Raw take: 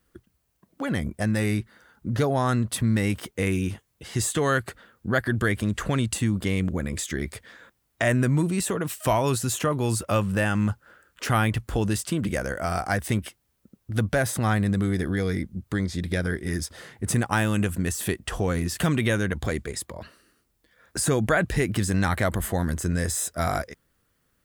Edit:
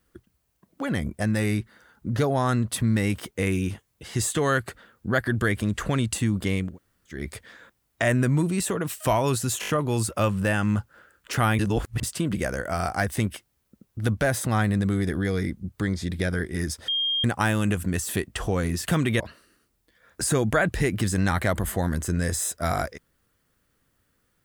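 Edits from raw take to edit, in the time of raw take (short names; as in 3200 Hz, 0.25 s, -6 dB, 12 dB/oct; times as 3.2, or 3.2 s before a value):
6.67–7.17 room tone, crossfade 0.24 s
9.61 stutter 0.02 s, 5 plays
11.51–11.95 reverse
16.8–17.16 bleep 3220 Hz -22 dBFS
19.12–19.96 cut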